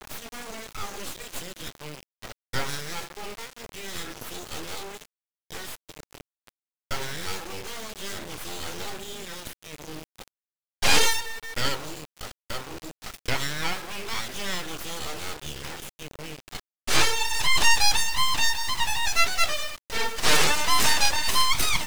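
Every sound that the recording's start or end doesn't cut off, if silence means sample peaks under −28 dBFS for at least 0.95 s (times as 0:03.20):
0:06.91–0:09.47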